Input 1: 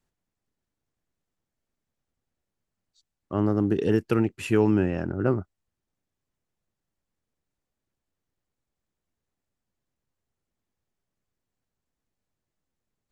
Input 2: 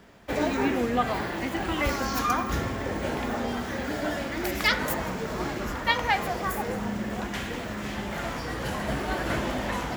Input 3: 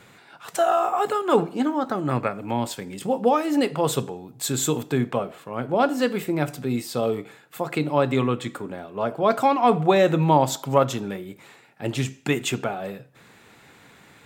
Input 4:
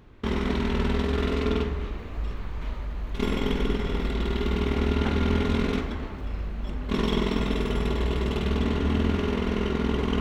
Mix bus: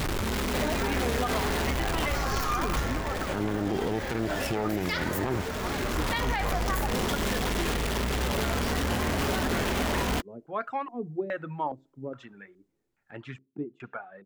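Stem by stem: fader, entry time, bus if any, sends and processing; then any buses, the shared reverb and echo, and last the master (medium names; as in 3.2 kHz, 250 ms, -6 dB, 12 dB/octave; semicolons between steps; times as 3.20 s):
+0.5 dB, 0.00 s, no send, self-modulated delay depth 0.74 ms
-0.5 dB, 0.25 s, no send, peaking EQ 200 Hz -7.5 dB 1.6 oct
-16.0 dB, 1.30 s, no send, reverb removal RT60 1.7 s; treble shelf 2 kHz +12 dB; LFO low-pass square 1.2 Hz 340–1600 Hz
-3.0 dB, 0.00 s, no send, one-bit comparator; auto duck -9 dB, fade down 0.60 s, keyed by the first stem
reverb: none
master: peak limiter -19 dBFS, peak gain reduction 10.5 dB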